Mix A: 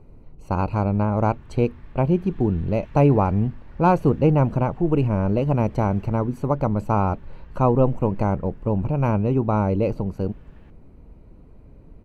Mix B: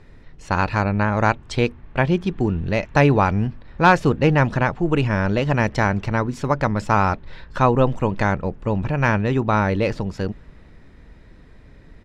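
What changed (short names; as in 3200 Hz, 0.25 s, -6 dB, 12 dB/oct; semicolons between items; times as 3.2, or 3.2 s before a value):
speech: remove running mean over 25 samples; master: add air absorption 130 m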